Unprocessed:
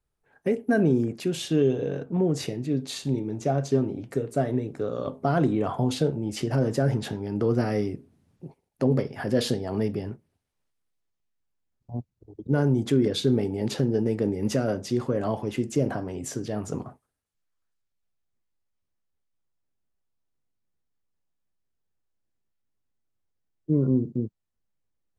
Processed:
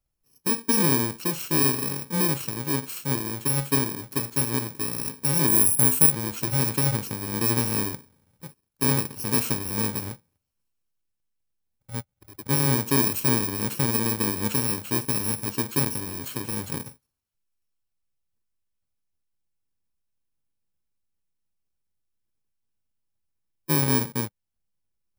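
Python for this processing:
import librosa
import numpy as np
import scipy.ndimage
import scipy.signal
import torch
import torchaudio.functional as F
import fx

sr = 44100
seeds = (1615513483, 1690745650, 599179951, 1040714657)

y = fx.bit_reversed(x, sr, seeds[0], block=64)
y = fx.high_shelf_res(y, sr, hz=7300.0, db=8.5, q=1.5, at=(5.47, 6.12))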